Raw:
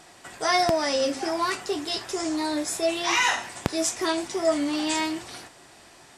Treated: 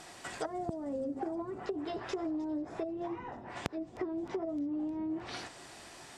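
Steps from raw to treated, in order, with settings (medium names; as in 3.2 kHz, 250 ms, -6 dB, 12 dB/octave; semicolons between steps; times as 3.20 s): low-pass that closes with the level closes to 320 Hz, closed at -22.5 dBFS; compression 6:1, threshold -33 dBFS, peak gain reduction 14 dB; feedback echo behind a high-pass 308 ms, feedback 69%, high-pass 4 kHz, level -17 dB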